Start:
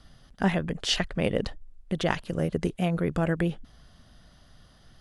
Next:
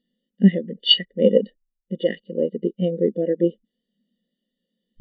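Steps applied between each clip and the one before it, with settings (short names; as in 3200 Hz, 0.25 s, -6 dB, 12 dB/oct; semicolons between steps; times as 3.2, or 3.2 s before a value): per-bin compression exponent 0.4; ten-band EQ 125 Hz -9 dB, 250 Hz +9 dB, 500 Hz +7 dB, 1000 Hz -4 dB, 2000 Hz +11 dB, 4000 Hz +10 dB, 8000 Hz +8 dB; spectral expander 4:1; gain -7 dB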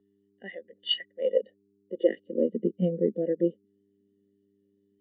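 high-pass sweep 940 Hz -> 100 Hz, 1.1–3.29; buzz 100 Hz, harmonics 4, -60 dBFS -1 dB/oct; three-band isolator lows -18 dB, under 170 Hz, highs -23 dB, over 2700 Hz; gain -6 dB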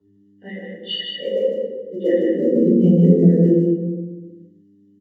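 short-mantissa float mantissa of 6-bit; echo 0.154 s -4 dB; reverb RT60 1.2 s, pre-delay 3 ms, DRR -9 dB; gain -5 dB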